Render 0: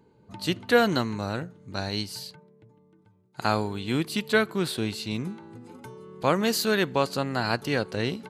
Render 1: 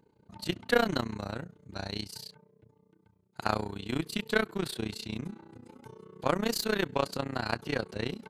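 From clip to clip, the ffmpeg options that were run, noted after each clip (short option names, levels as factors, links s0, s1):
-af "tremolo=f=30:d=0.919,aeval=exprs='0.376*(cos(1*acos(clip(val(0)/0.376,-1,1)))-cos(1*PI/2))+0.0266*(cos(3*acos(clip(val(0)/0.376,-1,1)))-cos(3*PI/2))+0.00944*(cos(8*acos(clip(val(0)/0.376,-1,1)))-cos(8*PI/2))':c=same"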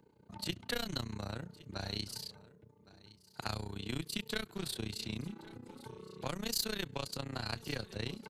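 -filter_complex "[0:a]acrossover=split=130|3000[s0][s1][s2];[s1]acompressor=threshold=0.01:ratio=4[s3];[s0][s3][s2]amix=inputs=3:normalize=0,aecho=1:1:1114:0.0944"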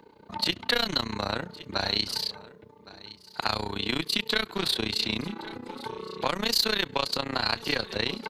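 -filter_complex "[0:a]equalizer=f=125:t=o:w=1:g=-6,equalizer=f=250:t=o:w=1:g=3,equalizer=f=500:t=o:w=1:g=4,equalizer=f=1000:t=o:w=1:g=8,equalizer=f=2000:t=o:w=1:g=6,equalizer=f=4000:t=o:w=1:g=9,equalizer=f=8000:t=o:w=1:g=-4,asplit=2[s0][s1];[s1]alimiter=limit=0.0841:level=0:latency=1:release=99,volume=1.33[s2];[s0][s2]amix=inputs=2:normalize=0"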